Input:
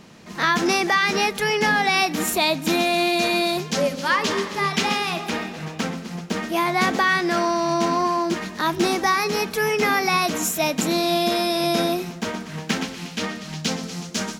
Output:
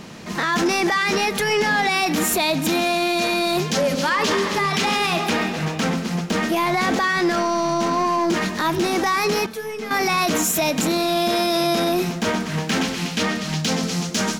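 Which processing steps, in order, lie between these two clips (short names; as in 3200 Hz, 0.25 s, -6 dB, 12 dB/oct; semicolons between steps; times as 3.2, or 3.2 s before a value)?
limiter -18 dBFS, peak gain reduction 10.5 dB; soft clip -21.5 dBFS, distortion -18 dB; 9.46–9.91 resonator 220 Hz, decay 0.4 s, harmonics all, mix 80%; gain +8.5 dB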